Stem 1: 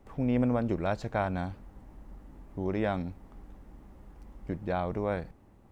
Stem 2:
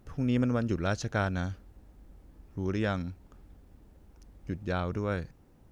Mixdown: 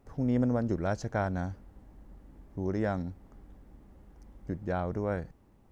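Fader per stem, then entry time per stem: -5.5, -7.0 dB; 0.00, 0.00 s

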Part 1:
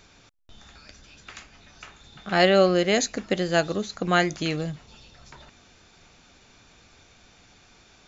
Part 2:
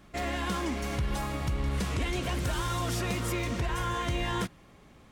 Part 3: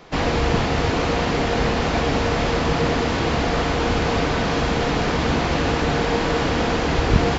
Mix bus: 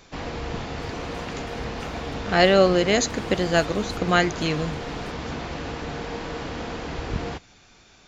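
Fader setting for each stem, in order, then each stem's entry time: +1.5, -14.0, -11.5 dB; 0.00, 0.65, 0.00 s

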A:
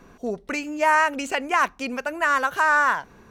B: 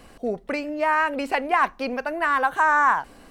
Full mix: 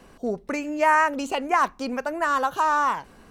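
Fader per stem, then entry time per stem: -3.5, -5.5 dB; 0.00, 0.00 s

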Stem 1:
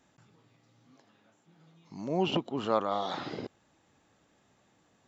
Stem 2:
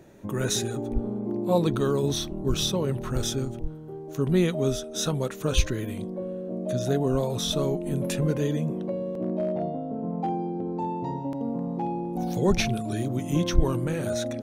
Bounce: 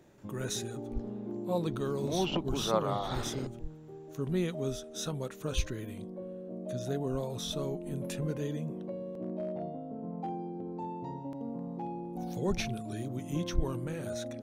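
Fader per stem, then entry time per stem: -2.5, -9.0 dB; 0.00, 0.00 s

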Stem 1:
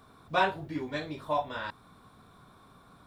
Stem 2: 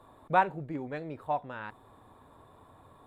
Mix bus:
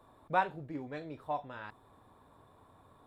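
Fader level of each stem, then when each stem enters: -17.0, -5.0 dB; 0.00, 0.00 s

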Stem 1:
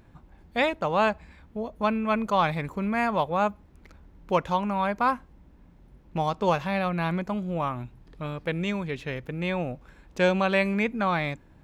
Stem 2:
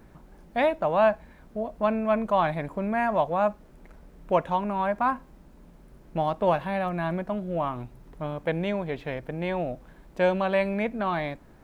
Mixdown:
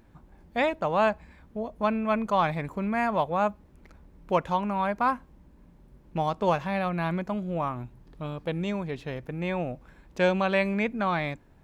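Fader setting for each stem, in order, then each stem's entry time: -4.0, -10.5 dB; 0.00, 0.00 s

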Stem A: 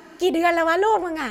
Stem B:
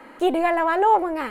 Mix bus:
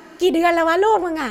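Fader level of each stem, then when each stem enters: +2.5, -9.5 dB; 0.00, 0.00 s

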